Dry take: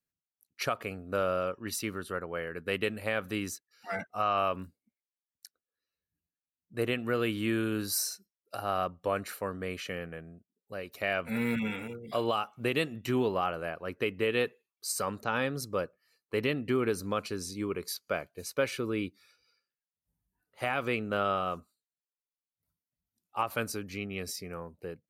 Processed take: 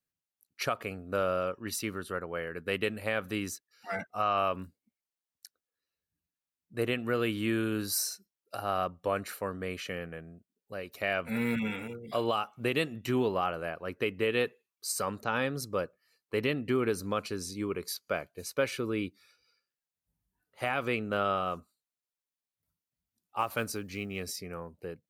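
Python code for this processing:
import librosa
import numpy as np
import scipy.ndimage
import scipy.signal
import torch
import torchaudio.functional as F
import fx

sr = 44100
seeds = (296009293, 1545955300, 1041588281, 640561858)

y = fx.block_float(x, sr, bits=7, at=(23.39, 24.25), fade=0.02)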